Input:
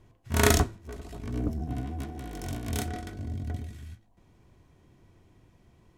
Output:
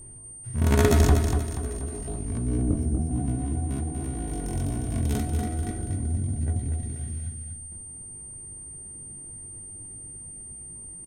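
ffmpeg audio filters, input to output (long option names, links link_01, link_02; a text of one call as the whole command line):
ffmpeg -i in.wav -filter_complex "[0:a]tiltshelf=frequency=660:gain=5.5,atempo=0.54,aeval=exprs='val(0)+0.00398*sin(2*PI*8800*n/s)':channel_layout=same,aecho=1:1:240|480|720|960:0.473|0.175|0.0648|0.024,asplit=2[link_01][link_02];[link_02]acompressor=threshold=-34dB:ratio=6,volume=0dB[link_03];[link_01][link_03]amix=inputs=2:normalize=0,volume=-1.5dB" out.wav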